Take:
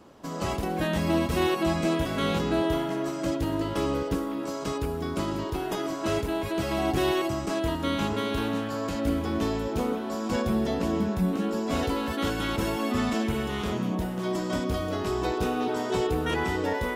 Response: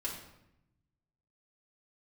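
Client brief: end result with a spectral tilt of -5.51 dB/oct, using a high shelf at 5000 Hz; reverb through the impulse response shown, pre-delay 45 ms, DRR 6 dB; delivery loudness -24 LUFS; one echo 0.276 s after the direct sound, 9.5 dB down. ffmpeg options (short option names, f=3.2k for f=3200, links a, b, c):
-filter_complex "[0:a]highshelf=f=5k:g=3.5,aecho=1:1:276:0.335,asplit=2[a][b];[1:a]atrim=start_sample=2205,adelay=45[c];[b][c]afir=irnorm=-1:irlink=0,volume=-7.5dB[d];[a][d]amix=inputs=2:normalize=0,volume=2.5dB"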